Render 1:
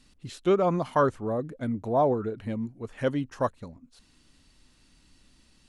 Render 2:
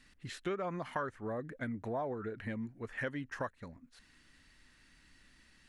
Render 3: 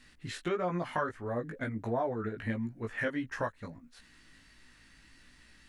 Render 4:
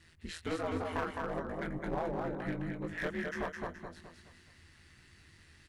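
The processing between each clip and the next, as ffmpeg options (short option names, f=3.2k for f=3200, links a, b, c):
-af "equalizer=f=1.8k:w=1.7:g=14,acompressor=threshold=-30dB:ratio=4,volume=-5.5dB"
-af "flanger=delay=16.5:depth=2.6:speed=1.5,volume=7.5dB"
-af "aeval=exprs='val(0)*sin(2*PI*82*n/s)':c=same,aecho=1:1:211|422|633|844|1055:0.631|0.246|0.096|0.0374|0.0146,aeval=exprs='clip(val(0),-1,0.0224)':c=same"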